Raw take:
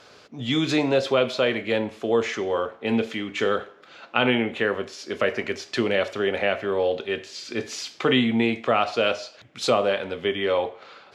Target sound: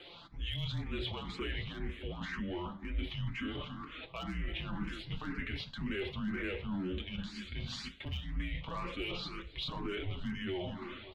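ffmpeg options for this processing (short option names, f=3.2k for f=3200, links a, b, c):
-filter_complex "[0:a]asoftclip=type=tanh:threshold=-15dB,highshelf=f=4.7k:t=q:w=3:g=-8,aeval=exprs='0.335*(cos(1*acos(clip(val(0)/0.335,-1,1)))-cos(1*PI/2))+0.0075*(cos(6*acos(clip(val(0)/0.335,-1,1)))-cos(6*PI/2))':c=same,flanger=delay=5.6:depth=2.4:regen=15:speed=0.22:shape=triangular,asplit=2[a][b];[b]aecho=0:1:281|562|843:0.112|0.037|0.0122[c];[a][c]amix=inputs=2:normalize=0,volume=17.5dB,asoftclip=hard,volume=-17.5dB,alimiter=level_in=1dB:limit=-24dB:level=0:latency=1:release=15,volume=-1dB,afreqshift=-180,asubboost=boost=3:cutoff=190,areverse,acompressor=threshold=-35dB:ratio=5,areverse,asplit=2[d][e];[e]afreqshift=2[f];[d][f]amix=inputs=2:normalize=1,volume=2.5dB"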